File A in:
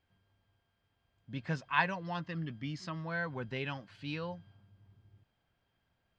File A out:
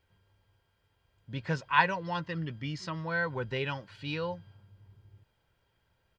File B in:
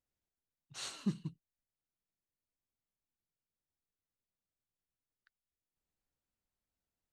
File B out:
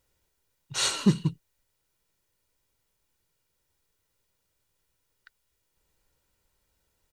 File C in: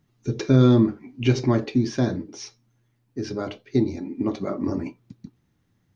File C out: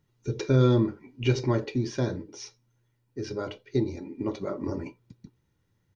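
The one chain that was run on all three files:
comb 2.1 ms, depth 43%; normalise peaks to -9 dBFS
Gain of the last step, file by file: +4.0, +16.5, -4.5 dB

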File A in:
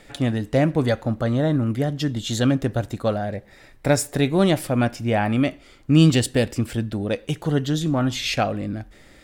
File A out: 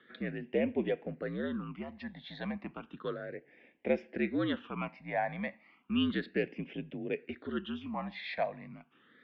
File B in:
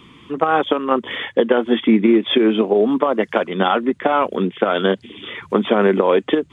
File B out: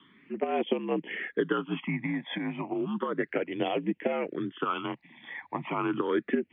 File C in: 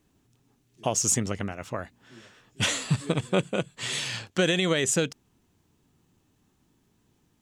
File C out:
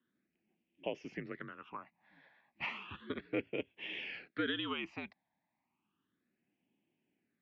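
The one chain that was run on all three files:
mistuned SSB -65 Hz 310–3300 Hz; phaser stages 8, 0.33 Hz, lowest notch 380–1300 Hz; gain -7 dB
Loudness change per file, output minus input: -14.5, -14.0, -14.5 LU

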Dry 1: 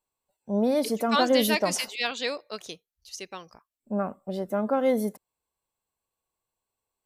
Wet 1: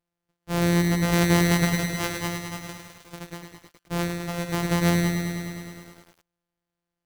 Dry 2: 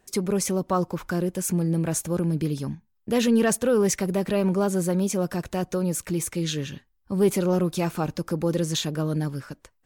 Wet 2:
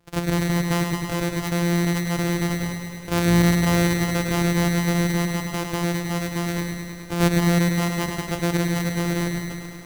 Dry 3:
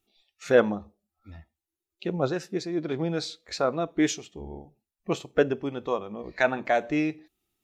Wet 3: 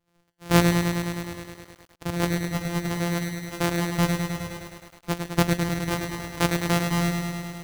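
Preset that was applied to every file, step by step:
sample sorter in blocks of 256 samples; thin delay 0.14 s, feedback 32%, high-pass 1500 Hz, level -17 dB; lo-fi delay 0.104 s, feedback 80%, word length 8-bit, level -5.5 dB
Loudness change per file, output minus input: +2.0, +2.5, +2.0 LU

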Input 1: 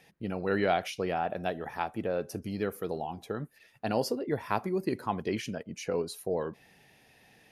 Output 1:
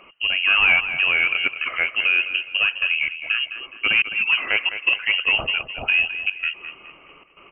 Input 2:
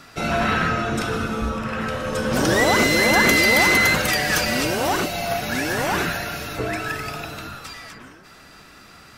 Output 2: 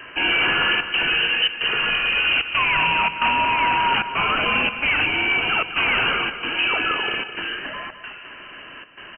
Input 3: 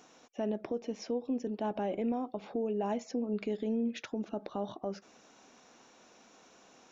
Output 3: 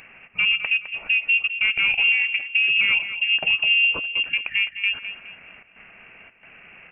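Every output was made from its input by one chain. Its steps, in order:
dynamic EQ 1100 Hz, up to -5 dB, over -40 dBFS, Q 2.9; limiter -14 dBFS; step gate "xxxxxx.xxxx." 112 bpm -24 dB; soft clip -22 dBFS; on a send: feedback echo 0.209 s, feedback 37%, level -11 dB; on the sum: inverted band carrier 3000 Hz; match loudness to -19 LUFS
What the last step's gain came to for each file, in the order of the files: +13.0, +7.0, +13.5 dB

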